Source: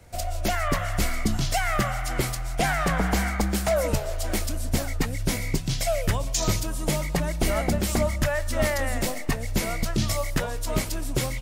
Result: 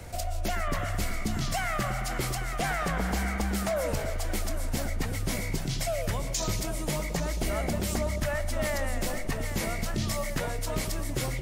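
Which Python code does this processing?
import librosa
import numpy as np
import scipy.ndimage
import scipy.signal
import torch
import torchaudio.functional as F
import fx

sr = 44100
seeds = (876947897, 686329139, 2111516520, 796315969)

y = fx.echo_split(x, sr, split_hz=640.0, low_ms=111, high_ms=799, feedback_pct=52, wet_db=-9.5)
y = fx.env_flatten(y, sr, amount_pct=50)
y = y * librosa.db_to_amplitude(-7.5)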